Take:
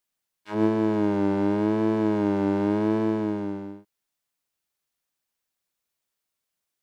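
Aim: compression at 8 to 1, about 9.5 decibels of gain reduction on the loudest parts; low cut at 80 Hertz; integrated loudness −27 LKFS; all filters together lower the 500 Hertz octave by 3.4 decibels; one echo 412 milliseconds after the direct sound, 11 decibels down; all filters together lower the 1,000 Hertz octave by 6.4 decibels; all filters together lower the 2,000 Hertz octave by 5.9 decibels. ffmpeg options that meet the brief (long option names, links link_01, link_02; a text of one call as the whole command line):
ffmpeg -i in.wav -af "highpass=80,equalizer=frequency=500:width_type=o:gain=-3.5,equalizer=frequency=1000:width_type=o:gain=-5.5,equalizer=frequency=2000:width_type=o:gain=-5.5,acompressor=threshold=-30dB:ratio=8,aecho=1:1:412:0.282,volume=7.5dB" out.wav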